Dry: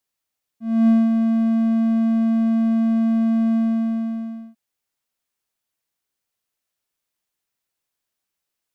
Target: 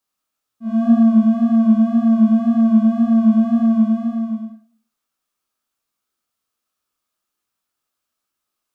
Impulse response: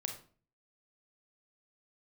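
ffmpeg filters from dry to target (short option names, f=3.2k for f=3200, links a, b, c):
-filter_complex "[0:a]equalizer=f=125:t=o:w=0.33:g=-10,equalizer=f=250:t=o:w=0.33:g=6,equalizer=f=1.25k:t=o:w=0.33:g=10,equalizer=f=2k:t=o:w=0.33:g=-5,acontrast=34,flanger=delay=17.5:depth=7.8:speed=1.9[a];[1:a]atrim=start_sample=2205[b];[a][b]afir=irnorm=-1:irlink=0"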